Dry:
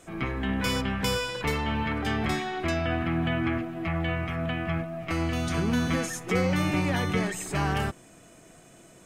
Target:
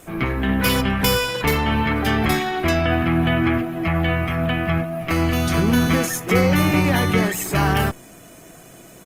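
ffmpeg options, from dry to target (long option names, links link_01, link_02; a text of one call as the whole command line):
ffmpeg -i in.wav -af "aresample=32000,aresample=44100,aexciter=amount=5.5:drive=2.9:freq=11000,volume=8.5dB" -ar 48000 -c:a libopus -b:a 24k out.opus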